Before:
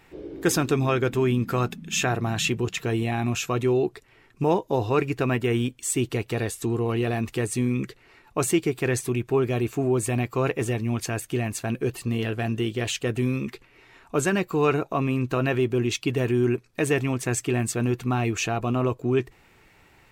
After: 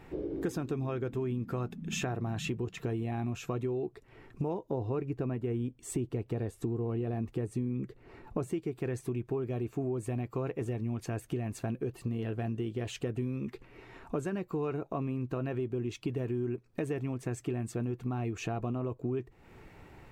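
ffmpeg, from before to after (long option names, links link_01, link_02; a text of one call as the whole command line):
ffmpeg -i in.wav -filter_complex "[0:a]asettb=1/sr,asplit=3[link_01][link_02][link_03];[link_01]atrim=end=4.714[link_04];[link_02]atrim=start=4.71:end=8.53,asetpts=PTS-STARTPTS,afade=type=in:duration=0.004:curve=qsin,afade=type=out:start_time=3.816:duration=0.004:curve=qsin,tiltshelf=frequency=970:gain=3.5[link_05];[link_03]atrim=start=8.526[link_06];[link_04][link_05]acrossfade=duration=0.004:curve1=hsin:curve2=qsin[link_07];[link_07][link_06]acrossfade=duration=0.004:curve1=qsin:curve2=hsin,tiltshelf=frequency=1300:gain=6.5,acompressor=threshold=-33dB:ratio=5" out.wav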